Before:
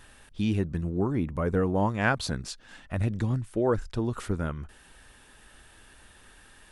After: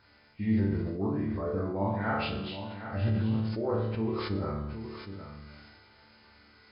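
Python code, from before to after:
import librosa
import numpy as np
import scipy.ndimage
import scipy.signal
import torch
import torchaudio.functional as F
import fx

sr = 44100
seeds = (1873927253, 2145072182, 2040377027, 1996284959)

p1 = fx.freq_compress(x, sr, knee_hz=1100.0, ratio=1.5)
p2 = scipy.signal.sosfilt(scipy.signal.butter(2, 61.0, 'highpass', fs=sr, output='sos'), p1)
p3 = fx.rider(p2, sr, range_db=10, speed_s=0.5)
p4 = p2 + (p3 * 10.0 ** (-2.0 / 20.0))
p5 = fx.resonator_bank(p4, sr, root=38, chord='sus4', decay_s=0.76)
p6 = p5 + fx.echo_single(p5, sr, ms=767, db=-10.5, dry=0)
p7 = fx.sustainer(p6, sr, db_per_s=29.0)
y = p7 * 10.0 ** (7.0 / 20.0)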